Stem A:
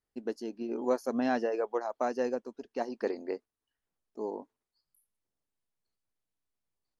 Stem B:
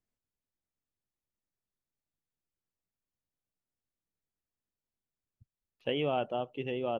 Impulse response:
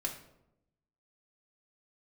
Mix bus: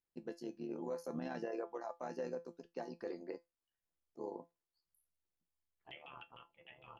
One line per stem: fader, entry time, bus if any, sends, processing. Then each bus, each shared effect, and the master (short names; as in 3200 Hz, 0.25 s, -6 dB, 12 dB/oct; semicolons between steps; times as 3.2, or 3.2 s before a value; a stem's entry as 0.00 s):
+1.5 dB, 0.00 s, no send, dry
-3.5 dB, 0.00 s, no send, spectral gate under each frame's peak -15 dB weak; LFO low-pass saw down 6.6 Hz 740–3200 Hz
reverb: off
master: AM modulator 75 Hz, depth 55%; resonator 170 Hz, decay 0.18 s, harmonics all, mix 70%; limiter -31.5 dBFS, peak gain reduction 10 dB